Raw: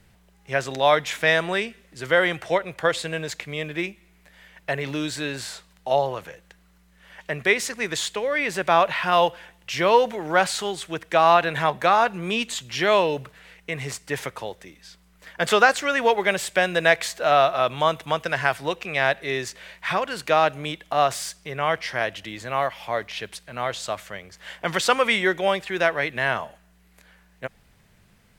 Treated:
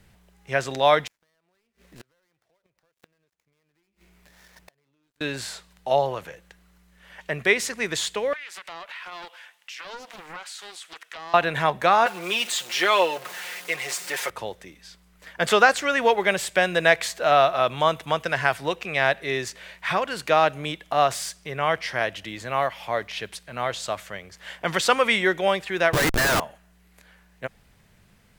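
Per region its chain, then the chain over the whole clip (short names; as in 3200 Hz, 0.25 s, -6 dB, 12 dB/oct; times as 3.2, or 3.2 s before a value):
1.07–5.21 switching dead time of 0.15 ms + compressor, threshold -32 dBFS + flipped gate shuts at -29 dBFS, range -35 dB
8.33–11.34 HPF 1200 Hz + compressor 4:1, threshold -37 dBFS + Doppler distortion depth 0.64 ms
12.06–14.3 zero-crossing step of -32 dBFS + HPF 490 Hz + comb 5.6 ms, depth 64%
25.93–26.4 EQ curve 270 Hz 0 dB, 1600 Hz +7 dB, 12000 Hz -19 dB + Schmitt trigger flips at -31 dBFS
whole clip: dry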